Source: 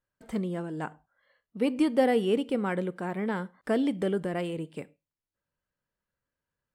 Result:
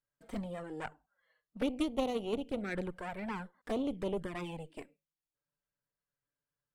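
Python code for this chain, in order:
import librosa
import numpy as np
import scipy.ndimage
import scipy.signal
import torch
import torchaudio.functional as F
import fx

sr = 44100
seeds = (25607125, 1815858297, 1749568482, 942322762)

y = fx.cheby_harmonics(x, sr, harmonics=(2, 3, 6, 8), levels_db=(-7, -20, -21, -14), full_scale_db=-10.5)
y = fx.env_flanger(y, sr, rest_ms=6.9, full_db=-25.5)
y = fx.rider(y, sr, range_db=4, speed_s=0.5)
y = y * librosa.db_to_amplitude(-5.0)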